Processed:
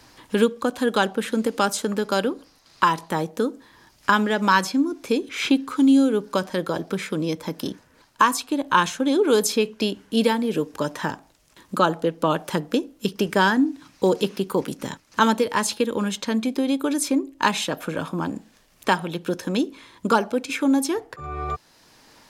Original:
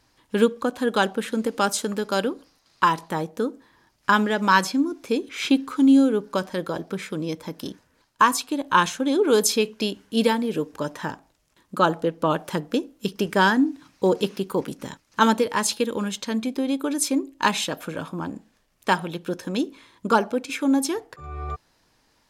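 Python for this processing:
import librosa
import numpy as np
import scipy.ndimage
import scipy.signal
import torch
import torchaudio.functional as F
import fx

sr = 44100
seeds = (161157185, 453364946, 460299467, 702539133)

y = fx.band_squash(x, sr, depth_pct=40)
y = y * librosa.db_to_amplitude(1.0)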